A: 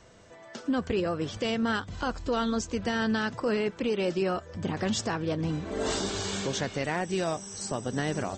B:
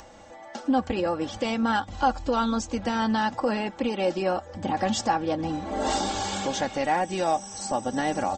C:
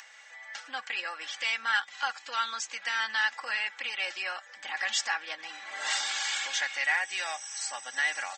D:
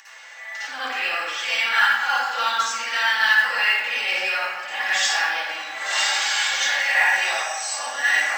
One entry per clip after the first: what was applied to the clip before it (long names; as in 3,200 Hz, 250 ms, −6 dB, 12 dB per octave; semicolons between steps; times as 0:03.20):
parametric band 790 Hz +13 dB 0.44 octaves; comb filter 3.6 ms, depth 61%; upward compression, threshold −43 dBFS
high-pass with resonance 1,900 Hz, resonance Q 2.7
convolution reverb RT60 1.4 s, pre-delay 50 ms, DRR −11.5 dB; flanger 1.6 Hz, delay 9.5 ms, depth 2.5 ms, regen +67%; noise that follows the level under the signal 30 dB; level +3.5 dB